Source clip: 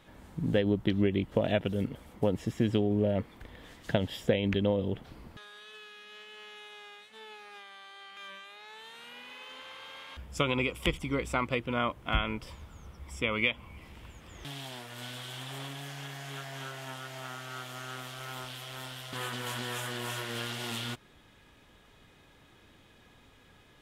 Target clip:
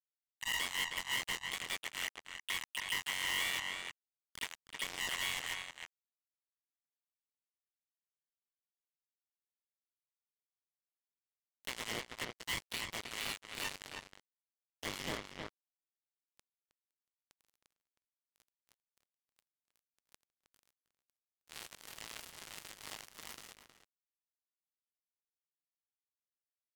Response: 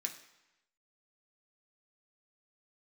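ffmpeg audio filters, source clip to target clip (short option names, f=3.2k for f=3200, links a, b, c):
-filter_complex "[0:a]afftfilt=real='real(if(lt(b,920),b+92*(1-2*mod(floor(b/92),2)),b),0)':imag='imag(if(lt(b,920),b+92*(1-2*mod(floor(b/92),2)),b),0)':win_size=2048:overlap=0.75,areverse,acompressor=mode=upward:threshold=-42dB:ratio=2.5,areverse,alimiter=limit=-20dB:level=0:latency=1:release=363,asplit=3[a][b][c];[b]asetrate=22050,aresample=44100,atempo=2,volume=-11dB[d];[c]asetrate=66075,aresample=44100,atempo=0.66742,volume=-1dB[e];[a][d][e]amix=inputs=3:normalize=0,asoftclip=type=tanh:threshold=-19dB,acrusher=bits=3:mix=0:aa=0.5,asetrate=39249,aresample=44100,asplit=2[f][g];[g]adelay=314.9,volume=-10dB,highshelf=f=4k:g=-7.08[h];[f][h]amix=inputs=2:normalize=0,asoftclip=type=hard:threshold=-29.5dB,volume=1dB"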